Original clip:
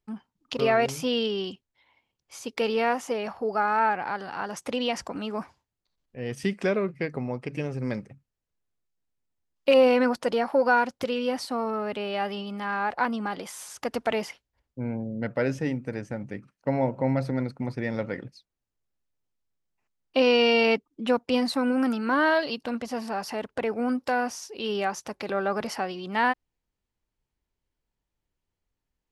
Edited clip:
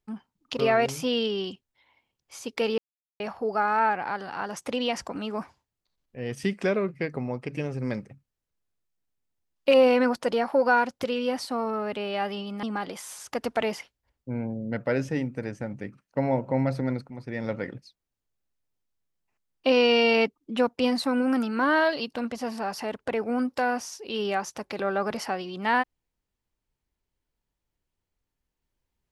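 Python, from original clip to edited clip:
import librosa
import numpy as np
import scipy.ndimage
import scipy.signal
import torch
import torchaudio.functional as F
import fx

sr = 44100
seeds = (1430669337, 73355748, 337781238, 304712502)

y = fx.edit(x, sr, fx.silence(start_s=2.78, length_s=0.42),
    fx.cut(start_s=12.63, length_s=0.5),
    fx.fade_in_from(start_s=17.6, length_s=0.42, floor_db=-12.0), tone=tone)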